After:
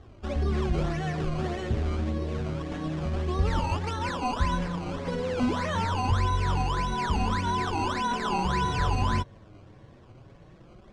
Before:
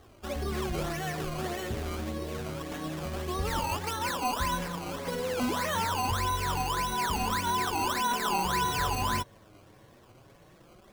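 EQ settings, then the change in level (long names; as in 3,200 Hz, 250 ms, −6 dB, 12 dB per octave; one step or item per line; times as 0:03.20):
low-pass filter 11,000 Hz 24 dB per octave
high-frequency loss of the air 93 metres
low-shelf EQ 250 Hz +9.5 dB
0.0 dB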